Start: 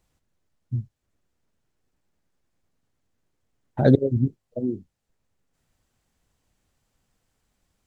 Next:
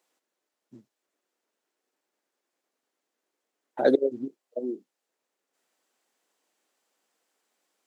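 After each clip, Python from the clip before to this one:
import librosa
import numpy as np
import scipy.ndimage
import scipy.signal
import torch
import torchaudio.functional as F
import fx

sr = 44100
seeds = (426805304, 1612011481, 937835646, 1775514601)

y = scipy.signal.sosfilt(scipy.signal.butter(4, 320.0, 'highpass', fs=sr, output='sos'), x)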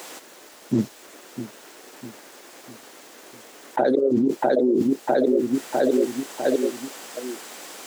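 y = fx.echo_feedback(x, sr, ms=651, feedback_pct=48, wet_db=-19.5)
y = fx.env_flatten(y, sr, amount_pct=100)
y = y * 10.0 ** (-2.5 / 20.0)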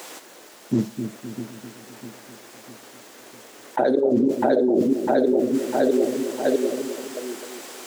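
y = fx.echo_bbd(x, sr, ms=257, stages=1024, feedback_pct=47, wet_db=-8.0)
y = fx.rev_schroeder(y, sr, rt60_s=0.38, comb_ms=33, drr_db=14.5)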